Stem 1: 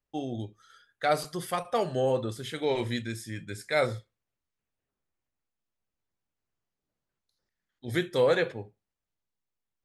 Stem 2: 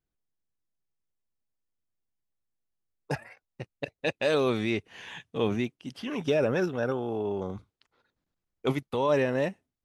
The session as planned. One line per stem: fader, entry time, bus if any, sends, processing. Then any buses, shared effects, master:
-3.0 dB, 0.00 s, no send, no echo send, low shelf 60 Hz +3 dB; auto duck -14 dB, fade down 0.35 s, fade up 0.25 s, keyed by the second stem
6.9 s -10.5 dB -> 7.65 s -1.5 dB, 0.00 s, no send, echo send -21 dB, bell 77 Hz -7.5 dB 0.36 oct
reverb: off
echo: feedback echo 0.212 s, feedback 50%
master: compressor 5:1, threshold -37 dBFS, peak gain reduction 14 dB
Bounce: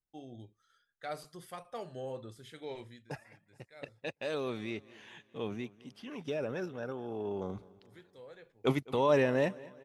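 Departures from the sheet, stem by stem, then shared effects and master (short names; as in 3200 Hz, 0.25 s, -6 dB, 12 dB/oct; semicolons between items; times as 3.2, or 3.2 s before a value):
stem 1 -3.0 dB -> -14.5 dB; master: missing compressor 5:1, threshold -37 dBFS, peak gain reduction 14 dB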